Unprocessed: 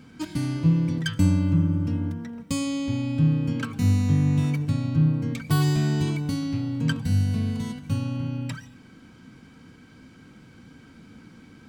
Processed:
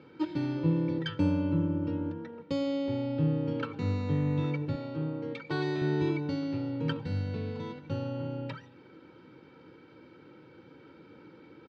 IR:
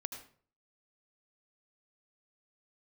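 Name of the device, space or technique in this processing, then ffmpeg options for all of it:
kitchen radio: -filter_complex "[0:a]highpass=170,equalizer=f=330:t=q:w=4:g=7,equalizer=f=560:t=q:w=4:g=7,equalizer=f=2.1k:t=q:w=4:g=-5,equalizer=f=3.1k:t=q:w=4:g=-4,lowpass=f=3.7k:w=0.5412,lowpass=f=3.7k:w=1.3066,aecho=1:1:2.2:0.66,asettb=1/sr,asplit=3[a][b][c];[a]atrim=end=4.754[d];[b]atrim=start=4.75:end=5.82,asetpts=PTS-STARTPTS,afade=t=in:d=0.004:c=qsin,afade=t=out:st=1.066:d=0.004:c=qsin,highpass=f=330:p=1[e];[c]atrim=start=5.816[f];[d][e]acrossfade=d=0.004:c1=hsin:c2=qsin[g];[g][f]acrossfade=d=0.004:c1=qsin:c2=hsin,volume=-3dB"

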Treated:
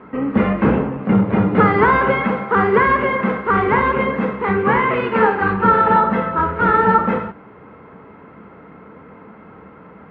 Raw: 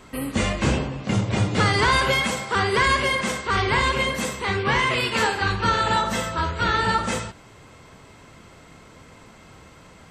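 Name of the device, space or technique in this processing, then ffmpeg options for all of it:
bass cabinet: -af "highpass=80,equalizer=f=110:t=q:w=4:g=-5,equalizer=f=200:t=q:w=4:g=10,equalizer=f=290:t=q:w=4:g=5,equalizer=f=450:t=q:w=4:g=9,equalizer=f=880:t=q:w=4:g=5,equalizer=f=1.3k:t=q:w=4:g=6,lowpass=f=2.1k:w=0.5412,lowpass=f=2.1k:w=1.3066,volume=2.5dB"

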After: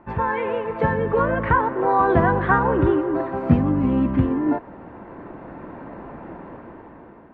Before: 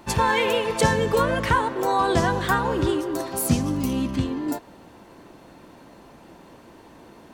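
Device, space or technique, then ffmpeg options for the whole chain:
action camera in a waterproof case: -af "lowpass=f=1.9k:w=0.5412,lowpass=f=1.9k:w=1.3066,dynaudnorm=f=330:g=7:m=13.5dB,volume=-2dB" -ar 44100 -c:a aac -b:a 64k

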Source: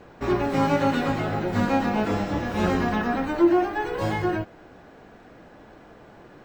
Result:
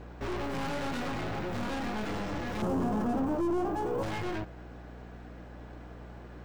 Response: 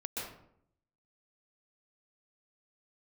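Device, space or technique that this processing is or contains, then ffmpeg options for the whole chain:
valve amplifier with mains hum: -filter_complex "[0:a]aeval=exprs='(tanh(44.7*val(0)+0.55)-tanh(0.55))/44.7':c=same,aeval=exprs='val(0)+0.00501*(sin(2*PI*60*n/s)+sin(2*PI*2*60*n/s)/2+sin(2*PI*3*60*n/s)/3+sin(2*PI*4*60*n/s)/4+sin(2*PI*5*60*n/s)/5)':c=same,asettb=1/sr,asplit=3[a][b][c];[a]atrim=end=2.624[d];[b]atrim=start=2.62:end=4.03,asetpts=PTS-STARTPTS,afade=t=in:d=0.004:c=qsin,afade=t=out:st=1.406:d=0.004:c=qsin,equalizer=f=125:t=o:w=1:g=5,equalizer=f=250:t=o:w=1:g=6,equalizer=f=500:t=o:w=1:g=4,equalizer=f=1k:t=o:w=1:g=4,equalizer=f=2k:t=o:w=1:g=-11,equalizer=f=4k:t=o:w=1:g=-11[e];[c]atrim=start=4.026[f];[d][e]acrossfade=d=0.004:c1=hsin:c2=qsin[g];[g][f]acrossfade=d=0.004:c1=qsin:c2=hsin"

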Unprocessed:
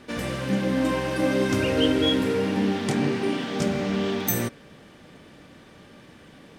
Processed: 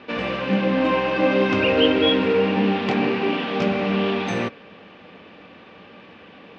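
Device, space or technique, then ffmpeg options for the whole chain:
guitar cabinet: -af "highpass=80,equalizer=f=140:t=q:w=4:g=-10,equalizer=f=190:t=q:w=4:g=5,equalizer=f=480:t=q:w=4:g=5,equalizer=f=770:t=q:w=4:g=4,equalizer=f=1.1k:t=q:w=4:g=5,equalizer=f=2.6k:t=q:w=4:g=9,lowpass=f=4.4k:w=0.5412,lowpass=f=4.4k:w=1.3066,equalizer=f=1.2k:w=0.33:g=3"

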